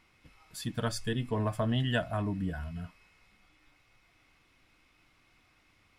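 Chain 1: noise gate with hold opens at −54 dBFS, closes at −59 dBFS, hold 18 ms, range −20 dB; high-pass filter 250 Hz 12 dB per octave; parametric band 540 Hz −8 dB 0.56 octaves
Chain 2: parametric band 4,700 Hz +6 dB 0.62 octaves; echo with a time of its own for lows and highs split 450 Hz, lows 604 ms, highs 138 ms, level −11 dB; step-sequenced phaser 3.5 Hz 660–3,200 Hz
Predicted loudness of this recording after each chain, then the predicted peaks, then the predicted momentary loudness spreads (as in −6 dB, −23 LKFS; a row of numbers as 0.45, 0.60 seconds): −37.5, −36.0 LKFS; −18.0, −16.5 dBFS; 15, 18 LU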